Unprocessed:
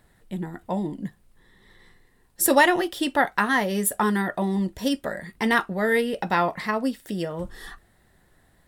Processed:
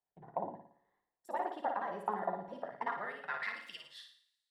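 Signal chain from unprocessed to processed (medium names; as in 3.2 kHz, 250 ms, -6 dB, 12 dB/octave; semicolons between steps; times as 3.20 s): compression 6:1, threshold -28 dBFS, peak gain reduction 15 dB; band-pass sweep 770 Hz -> 4.1 kHz, 5.18–7.81 s; granular stretch 0.52×, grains 21 ms; feedback comb 140 Hz, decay 0.82 s, harmonics all, mix 40%; on a send: flutter echo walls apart 9.8 m, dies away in 0.66 s; on the sum: three bands expanded up and down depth 70%; trim +4.5 dB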